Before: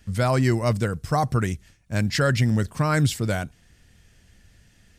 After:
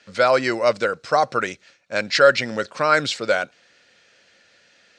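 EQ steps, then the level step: speaker cabinet 420–6600 Hz, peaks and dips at 540 Hz +10 dB, 1400 Hz +7 dB, 2400 Hz +5 dB, 4100 Hz +7 dB; +3.5 dB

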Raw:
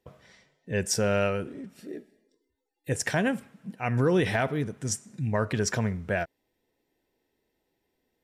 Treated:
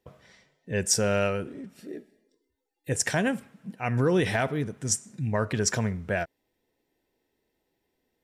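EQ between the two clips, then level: dynamic EQ 7700 Hz, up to +6 dB, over -44 dBFS, Q 0.9; 0.0 dB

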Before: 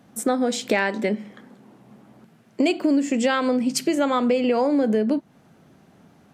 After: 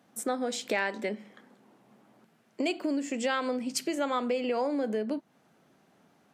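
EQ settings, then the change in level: HPF 370 Hz 6 dB/oct; -6.5 dB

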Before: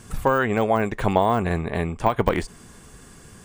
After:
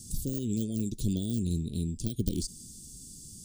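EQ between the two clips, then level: inverse Chebyshev band-stop 780–2000 Hz, stop band 60 dB; low shelf 340 Hz -10 dB; bell 460 Hz -10.5 dB 1.1 oct; +5.0 dB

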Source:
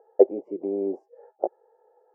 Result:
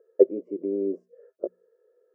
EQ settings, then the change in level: Butterworth band-stop 820 Hz, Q 1.3; bell 240 Hz +4 dB 1.9 oct; notches 60/120/180/240 Hz; -2.5 dB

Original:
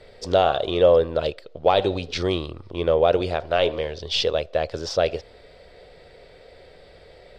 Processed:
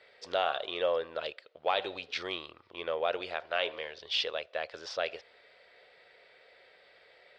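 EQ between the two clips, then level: band-pass 2000 Hz, Q 0.99; -3.0 dB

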